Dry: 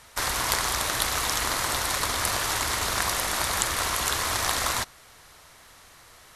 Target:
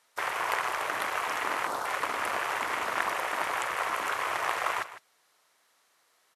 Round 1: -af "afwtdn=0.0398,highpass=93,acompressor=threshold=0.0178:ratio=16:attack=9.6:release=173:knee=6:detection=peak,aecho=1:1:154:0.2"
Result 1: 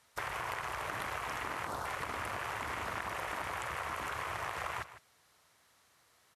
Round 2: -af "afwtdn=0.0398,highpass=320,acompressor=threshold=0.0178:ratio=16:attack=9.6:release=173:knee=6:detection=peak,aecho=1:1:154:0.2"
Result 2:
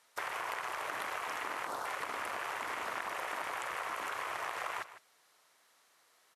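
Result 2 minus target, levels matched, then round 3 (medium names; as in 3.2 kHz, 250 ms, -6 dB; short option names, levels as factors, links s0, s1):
compression: peak gain reduction +13 dB
-af "afwtdn=0.0398,highpass=320,aecho=1:1:154:0.2"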